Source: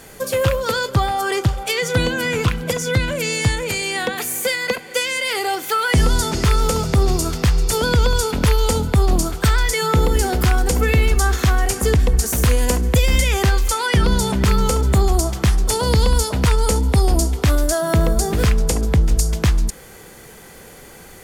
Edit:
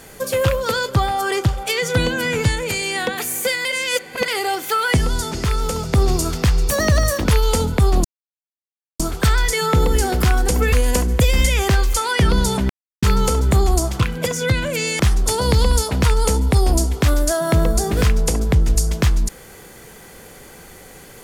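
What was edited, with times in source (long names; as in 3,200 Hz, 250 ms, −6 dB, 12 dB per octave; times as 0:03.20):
0:02.45–0:03.45: move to 0:15.41
0:04.65–0:05.28: reverse
0:05.97–0:06.93: clip gain −4 dB
0:07.69–0:08.40: play speed 128%
0:09.20: splice in silence 0.95 s
0:10.93–0:12.47: remove
0:14.44: splice in silence 0.33 s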